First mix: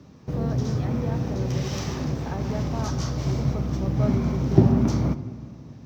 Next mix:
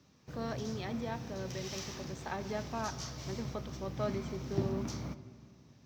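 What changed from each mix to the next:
background -11.5 dB; master: add tilt shelf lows -6.5 dB, about 1300 Hz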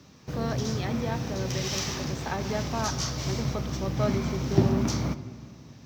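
speech +6.5 dB; background +12.0 dB

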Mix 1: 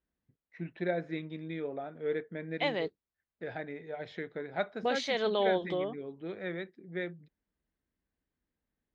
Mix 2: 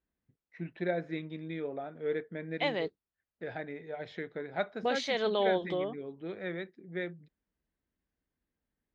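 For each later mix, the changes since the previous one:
none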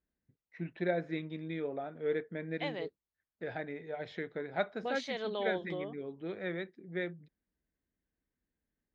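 second voice -7.0 dB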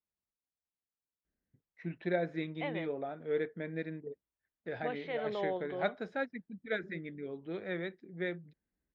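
first voice: entry +1.25 s; second voice: add LPF 2700 Hz 24 dB/oct

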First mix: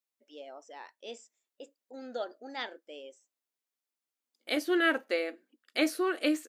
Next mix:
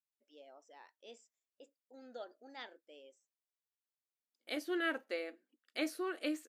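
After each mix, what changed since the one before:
first voice -11.0 dB; second voice -9.0 dB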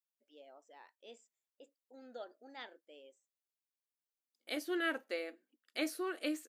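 first voice: add bell 5500 Hz -9 dB 0.28 oct; second voice: add high shelf 6900 Hz +5.5 dB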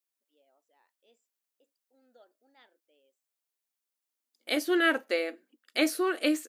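first voice -12.0 dB; second voice +10.5 dB

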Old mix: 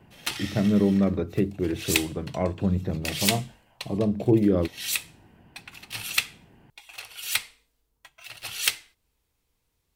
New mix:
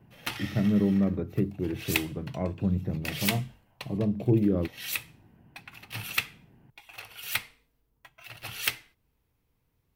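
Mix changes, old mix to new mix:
speech -7.0 dB; master: add ten-band EQ 125 Hz +7 dB, 250 Hz +3 dB, 4000 Hz -5 dB, 8000 Hz -10 dB

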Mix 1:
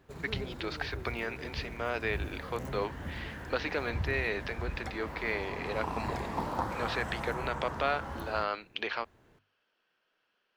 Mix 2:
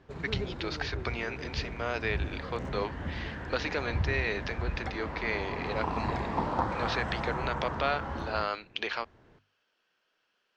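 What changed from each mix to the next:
first voice: remove air absorption 230 m; background +4.0 dB; master: add air absorption 120 m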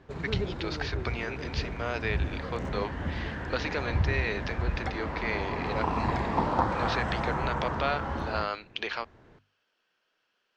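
background +3.5 dB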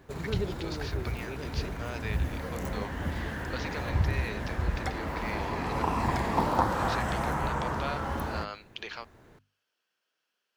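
first voice -8.0 dB; second voice: muted; master: remove air absorption 120 m

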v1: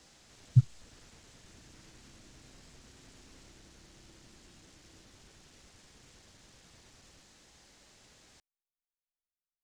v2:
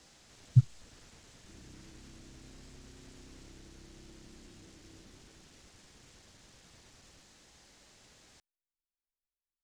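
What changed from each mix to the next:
background +7.0 dB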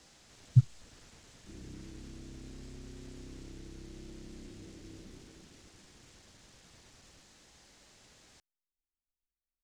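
background +7.0 dB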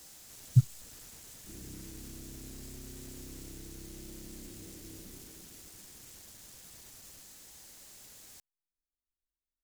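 master: remove air absorption 110 m

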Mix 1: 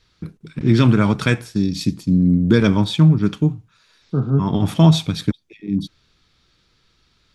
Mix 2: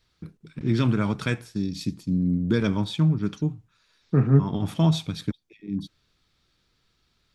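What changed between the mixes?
first voice -8.5 dB; second voice: remove brick-wall FIR low-pass 1600 Hz

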